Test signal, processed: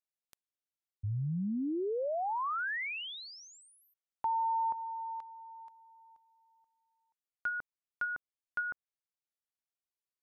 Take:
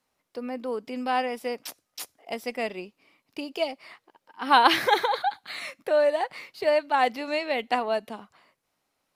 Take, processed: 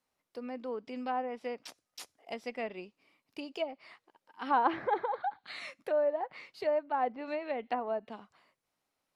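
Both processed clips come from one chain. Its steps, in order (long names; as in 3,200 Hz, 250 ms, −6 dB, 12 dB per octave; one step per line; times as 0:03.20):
treble cut that deepens with the level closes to 1,100 Hz, closed at −22 dBFS
level −7 dB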